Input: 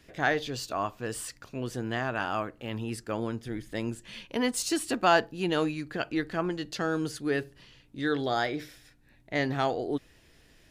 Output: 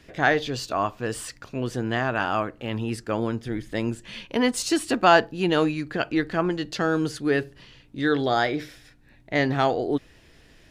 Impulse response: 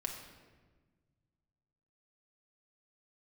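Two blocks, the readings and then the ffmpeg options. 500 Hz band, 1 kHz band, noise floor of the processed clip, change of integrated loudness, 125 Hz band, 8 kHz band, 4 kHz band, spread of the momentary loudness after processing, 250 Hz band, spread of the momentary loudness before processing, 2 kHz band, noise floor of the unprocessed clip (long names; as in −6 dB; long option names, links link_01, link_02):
+6.0 dB, +6.0 dB, −55 dBFS, +5.5 dB, +6.0 dB, +2.0 dB, +5.0 dB, 9 LU, +6.0 dB, 9 LU, +5.5 dB, −60 dBFS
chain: -af "highshelf=frequency=8100:gain=-8.5,volume=6dB"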